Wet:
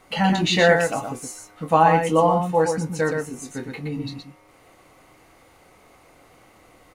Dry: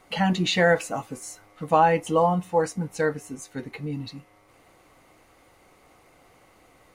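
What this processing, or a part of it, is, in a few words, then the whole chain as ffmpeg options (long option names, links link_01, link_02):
slapback doubling: -filter_complex "[0:a]asplit=3[link_01][link_02][link_03];[link_02]adelay=25,volume=-7dB[link_04];[link_03]adelay=120,volume=-5dB[link_05];[link_01][link_04][link_05]amix=inputs=3:normalize=0,volume=2dB"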